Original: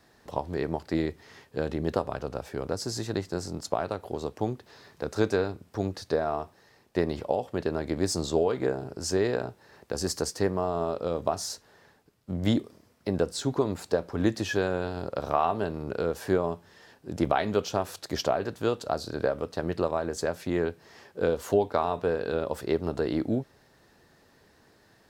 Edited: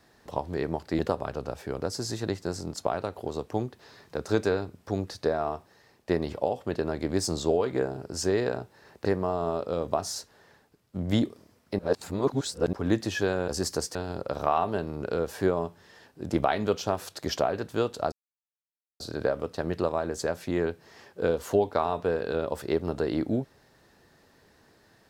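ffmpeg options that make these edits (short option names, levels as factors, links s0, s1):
-filter_complex "[0:a]asplit=8[s0][s1][s2][s3][s4][s5][s6][s7];[s0]atrim=end=0.992[s8];[s1]atrim=start=1.858:end=9.922[s9];[s2]atrim=start=10.388:end=13.132[s10];[s3]atrim=start=13.128:end=14.072,asetpts=PTS-STARTPTS,areverse[s11];[s4]atrim=start=14.068:end=14.822[s12];[s5]atrim=start=9.918:end=10.392[s13];[s6]atrim=start=14.818:end=18.99,asetpts=PTS-STARTPTS,afade=t=out:st=4.168:d=0.004:c=hsin,apad=pad_dur=0.88[s14];[s7]atrim=start=18.99,asetpts=PTS-STARTPTS,afade=t=in:d=0.004:c=hsin[s15];[s8][s9]acrossfade=d=0.004:c1=hsin:c2=hsin[s16];[s16][s10]acrossfade=d=0.004:c1=hsin:c2=hsin[s17];[s17][s11]acrossfade=d=0.004:c1=hsin:c2=hsin[s18];[s18][s12]acrossfade=d=0.004:c1=hsin:c2=hsin[s19];[s19][s13]acrossfade=d=0.004:c1=hsin:c2=hsin[s20];[s14][s15]concat=n=2:v=0:a=1[s21];[s20][s21]acrossfade=d=0.004:c1=hsin:c2=hsin"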